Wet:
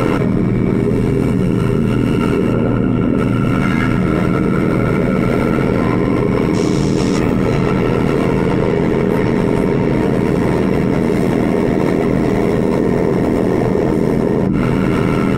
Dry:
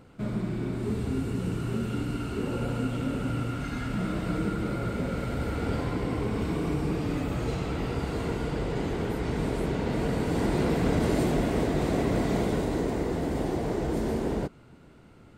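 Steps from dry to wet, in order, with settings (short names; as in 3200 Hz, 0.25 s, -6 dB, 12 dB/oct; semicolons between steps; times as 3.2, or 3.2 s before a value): octaver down 2 oct, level +3 dB; 2.53–3.18 high shelf 3000 Hz -11 dB; 6.53–7.18 band noise 2900–7900 Hz -41 dBFS; tone controls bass +3 dB, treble +6 dB; notches 50/100/150/200/250/300 Hz; reverb RT60 0.20 s, pre-delay 3 ms, DRR 1 dB; AM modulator 81 Hz, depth 60%; fast leveller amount 100%; gain -2.5 dB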